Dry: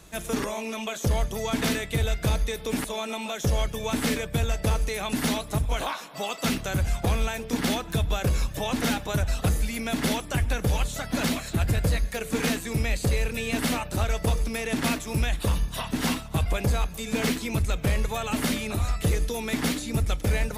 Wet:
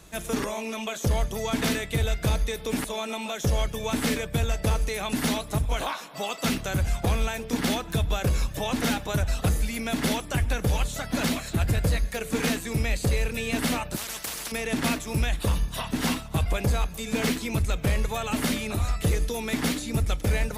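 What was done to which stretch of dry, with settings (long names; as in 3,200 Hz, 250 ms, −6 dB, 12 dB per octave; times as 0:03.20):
0:13.96–0:14.52: every bin compressed towards the loudest bin 10 to 1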